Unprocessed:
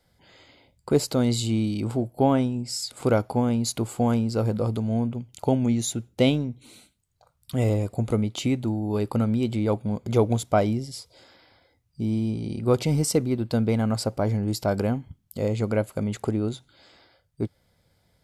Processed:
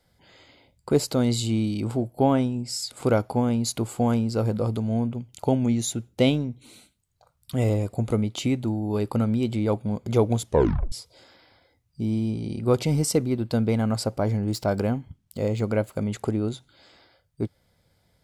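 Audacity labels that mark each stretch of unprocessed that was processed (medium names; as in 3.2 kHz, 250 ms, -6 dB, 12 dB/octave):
10.440000	10.440000	tape stop 0.48 s
14.310000	15.960000	median filter over 3 samples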